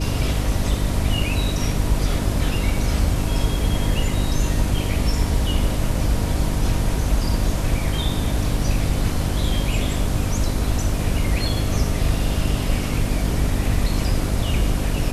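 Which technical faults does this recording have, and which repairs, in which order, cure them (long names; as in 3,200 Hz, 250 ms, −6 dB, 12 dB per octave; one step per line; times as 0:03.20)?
mains hum 50 Hz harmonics 6 −25 dBFS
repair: hum removal 50 Hz, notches 6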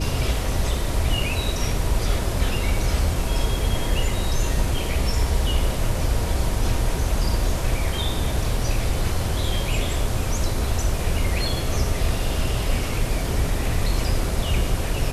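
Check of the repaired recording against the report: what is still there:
none of them is left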